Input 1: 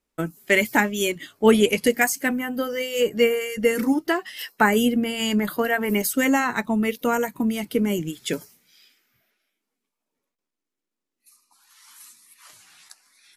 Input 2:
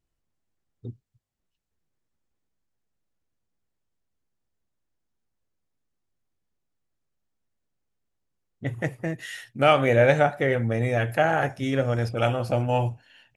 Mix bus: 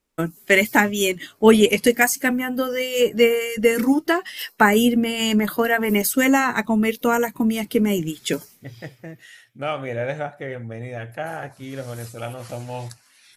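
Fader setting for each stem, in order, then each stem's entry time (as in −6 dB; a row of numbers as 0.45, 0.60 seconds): +3.0, −8.0 decibels; 0.00, 0.00 seconds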